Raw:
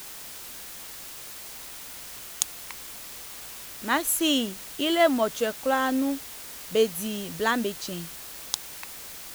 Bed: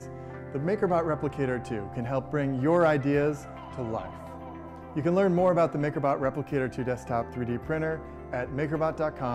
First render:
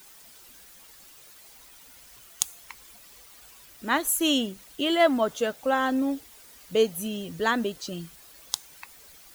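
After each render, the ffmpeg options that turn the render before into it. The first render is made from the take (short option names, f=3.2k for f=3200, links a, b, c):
-af "afftdn=nr=12:nf=-41"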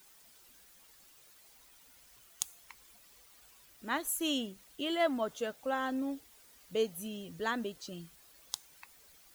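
-af "volume=-9.5dB"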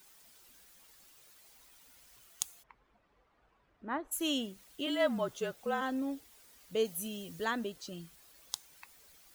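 -filter_complex "[0:a]asplit=3[a][b][c];[a]afade=t=out:st=2.62:d=0.02[d];[b]lowpass=1.3k,afade=t=in:st=2.62:d=0.02,afade=t=out:st=4.11:d=0.02[e];[c]afade=t=in:st=4.11:d=0.02[f];[d][e][f]amix=inputs=3:normalize=0,asplit=3[g][h][i];[g]afade=t=out:st=4.86:d=0.02[j];[h]afreqshift=-39,afade=t=in:st=4.86:d=0.02,afade=t=out:st=5.8:d=0.02[k];[i]afade=t=in:st=5.8:d=0.02[l];[j][k][l]amix=inputs=3:normalize=0,asettb=1/sr,asplit=3[m][n][o];[m]atrim=end=6.854[p];[n]atrim=start=6.85:end=7.45,asetpts=PTS-STARTPTS,afade=t=in:d=0.004:c=qsin,afade=t=out:st=0.596:d=0.004:c=qsin,highshelf=f=4.3k:g=6.5[q];[o]atrim=start=7.446[r];[p][q]acrossfade=d=0.004:c1=hsin:c2=qsin[s];[s][r]acrossfade=d=0.004:c1=qsin:c2=hsin"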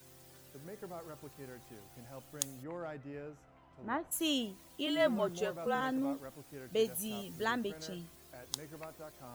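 -filter_complex "[1:a]volume=-21dB[a];[0:a][a]amix=inputs=2:normalize=0"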